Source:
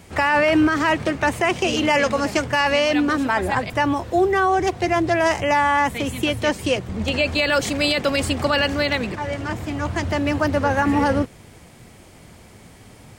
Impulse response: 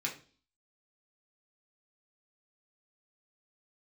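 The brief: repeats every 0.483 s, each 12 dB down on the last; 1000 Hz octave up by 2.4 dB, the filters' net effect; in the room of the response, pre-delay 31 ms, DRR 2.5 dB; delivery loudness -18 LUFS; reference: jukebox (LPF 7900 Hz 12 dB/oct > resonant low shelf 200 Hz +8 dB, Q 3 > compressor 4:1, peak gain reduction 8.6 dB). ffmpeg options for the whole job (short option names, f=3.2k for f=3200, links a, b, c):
-filter_complex "[0:a]equalizer=f=1k:t=o:g=3.5,aecho=1:1:483|966|1449:0.251|0.0628|0.0157,asplit=2[a][b];[1:a]atrim=start_sample=2205,adelay=31[c];[b][c]afir=irnorm=-1:irlink=0,volume=-6dB[d];[a][d]amix=inputs=2:normalize=0,lowpass=7.9k,lowshelf=f=200:t=q:w=3:g=8,acompressor=threshold=-19dB:ratio=4,volume=4.5dB"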